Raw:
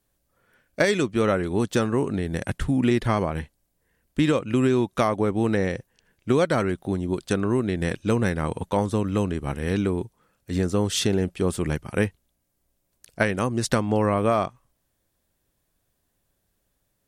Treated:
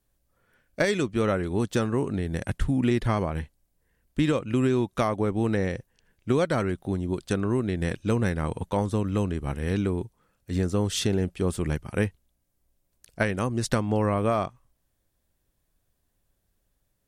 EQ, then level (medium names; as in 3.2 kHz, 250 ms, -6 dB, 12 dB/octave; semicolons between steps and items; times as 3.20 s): bass shelf 83 Hz +8.5 dB; -3.5 dB